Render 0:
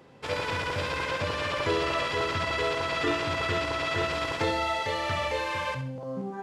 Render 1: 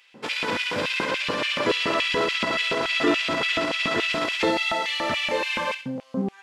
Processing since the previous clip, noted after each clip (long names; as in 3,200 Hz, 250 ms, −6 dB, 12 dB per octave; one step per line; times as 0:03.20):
auto-filter high-pass square 3.5 Hz 220–2,600 Hz
level +4 dB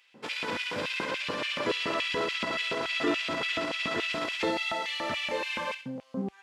high-pass filter 46 Hz 12 dB per octave
level −6.5 dB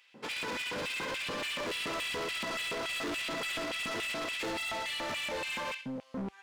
hard clipping −33.5 dBFS, distortion −7 dB